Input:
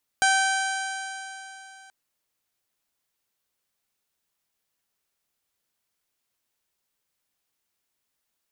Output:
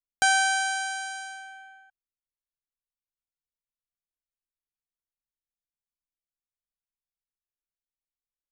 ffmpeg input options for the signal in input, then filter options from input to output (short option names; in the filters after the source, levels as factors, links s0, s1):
-f lavfi -i "aevalsrc='0.0891*pow(10,-3*t/3.25)*sin(2*PI*770.85*t)+0.106*pow(10,-3*t/3.25)*sin(2*PI*1546.76*t)+0.0266*pow(10,-3*t/3.25)*sin(2*PI*2332.76*t)+0.0316*pow(10,-3*t/3.25)*sin(2*PI*3133.74*t)+0.0224*pow(10,-3*t/3.25)*sin(2*PI*3954.46*t)+0.0224*pow(10,-3*t/3.25)*sin(2*PI*4799.47*t)+0.02*pow(10,-3*t/3.25)*sin(2*PI*5673.09*t)+0.0355*pow(10,-3*t/3.25)*sin(2*PI*6579.39*t)+0.0237*pow(10,-3*t/3.25)*sin(2*PI*7522.16*t)+0.0178*pow(10,-3*t/3.25)*sin(2*PI*8504.93*t)+0.0224*pow(10,-3*t/3.25)*sin(2*PI*9530.91*t)':d=1.68:s=44100"
-af "anlmdn=0.1"